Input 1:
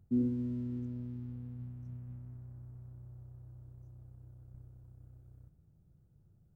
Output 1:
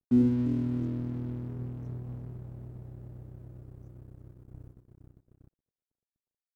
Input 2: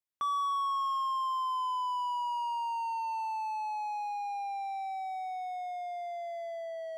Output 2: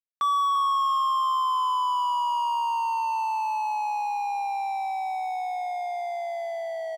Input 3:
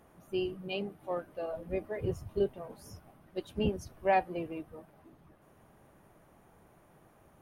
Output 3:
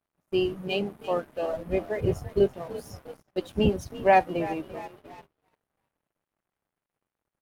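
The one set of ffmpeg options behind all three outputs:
-filter_complex "[0:a]asplit=6[a][b][c][d][e][f];[b]adelay=339,afreqshift=40,volume=-15dB[g];[c]adelay=678,afreqshift=80,volume=-20.8dB[h];[d]adelay=1017,afreqshift=120,volume=-26.7dB[i];[e]adelay=1356,afreqshift=160,volume=-32.5dB[j];[f]adelay=1695,afreqshift=200,volume=-38.4dB[k];[a][g][h][i][j][k]amix=inputs=6:normalize=0,aeval=exprs='sgn(val(0))*max(abs(val(0))-0.00133,0)':c=same,agate=range=-20dB:threshold=-57dB:ratio=16:detection=peak,volume=8dB"

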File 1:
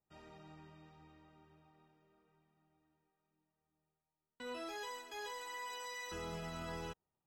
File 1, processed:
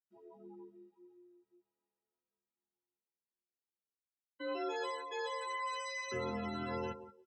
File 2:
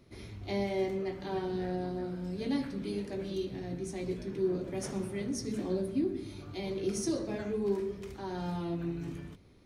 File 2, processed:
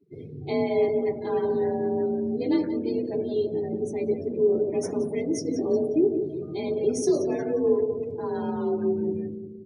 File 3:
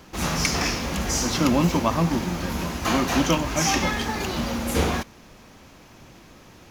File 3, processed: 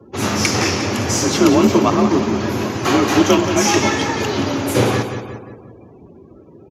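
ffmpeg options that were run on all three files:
-filter_complex "[0:a]equalizer=f=340:w=1.8:g=5.5,asplit=2[a][b];[b]aecho=0:1:177|354|531|708|885|1062:0.355|0.192|0.103|0.0559|0.0302|0.0163[c];[a][c]amix=inputs=2:normalize=0,afreqshift=44,afftdn=nr=31:nf=-44,volume=5dB"

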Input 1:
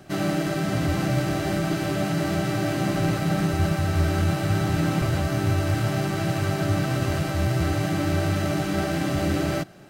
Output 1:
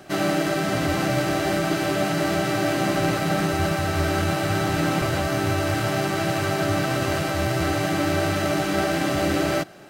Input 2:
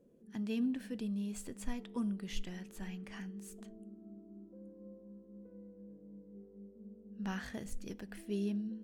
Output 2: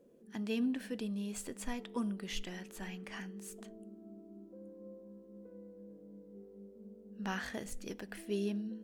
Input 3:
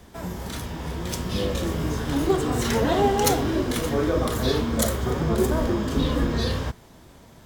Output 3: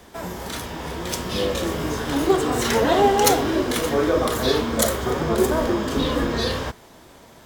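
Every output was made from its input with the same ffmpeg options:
-af "bass=f=250:g=-9,treble=f=4k:g=-1,volume=5dB"

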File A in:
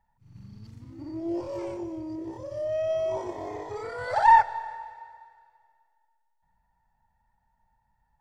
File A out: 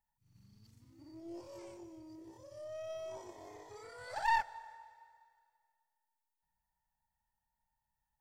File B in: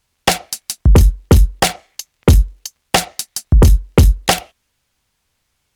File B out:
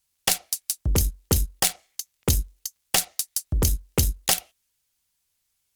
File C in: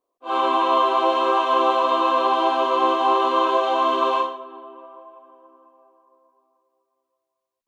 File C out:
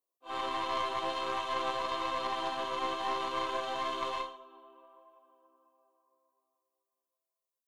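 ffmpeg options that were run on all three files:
-af "aeval=exprs='0.891*(cos(1*acos(clip(val(0)/0.891,-1,1)))-cos(1*PI/2))+0.112*(cos(3*acos(clip(val(0)/0.891,-1,1)))-cos(3*PI/2))+0.0316*(cos(8*acos(clip(val(0)/0.891,-1,1)))-cos(8*PI/2))':c=same,crystalizer=i=4:c=0,volume=-13dB"

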